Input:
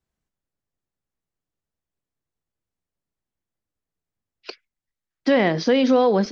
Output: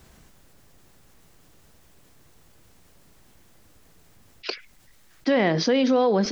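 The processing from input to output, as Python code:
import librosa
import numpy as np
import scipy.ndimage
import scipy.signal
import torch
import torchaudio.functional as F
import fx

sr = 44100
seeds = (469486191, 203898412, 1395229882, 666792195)

y = fx.env_flatten(x, sr, amount_pct=50)
y = F.gain(torch.from_numpy(y), -4.0).numpy()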